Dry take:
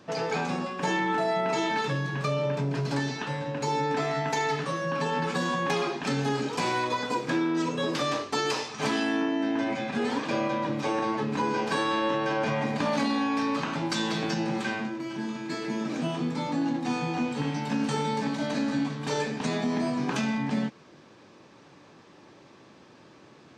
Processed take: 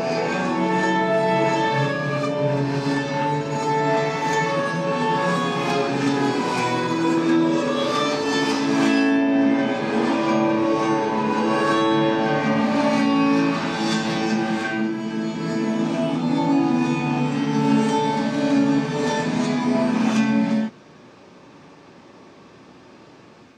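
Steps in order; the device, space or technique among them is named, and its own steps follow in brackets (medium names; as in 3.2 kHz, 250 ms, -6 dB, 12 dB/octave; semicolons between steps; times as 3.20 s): reverse reverb (reverse; reverberation RT60 2.3 s, pre-delay 3 ms, DRR -5.5 dB; reverse)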